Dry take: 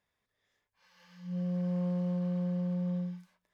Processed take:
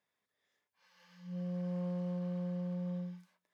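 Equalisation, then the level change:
high-pass filter 170 Hz 12 dB per octave
−3.0 dB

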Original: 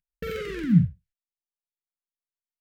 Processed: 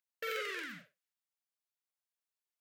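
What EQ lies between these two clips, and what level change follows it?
high-pass filter 560 Hz 24 dB per octave
0.0 dB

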